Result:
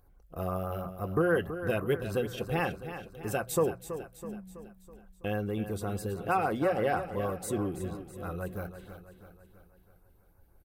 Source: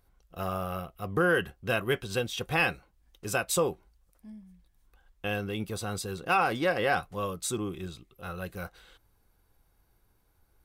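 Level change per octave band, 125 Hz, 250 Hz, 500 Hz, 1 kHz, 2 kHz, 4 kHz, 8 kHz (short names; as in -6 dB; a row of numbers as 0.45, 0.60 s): +1.5, +1.5, +0.5, -2.0, -7.0, -10.0, -6.5 dB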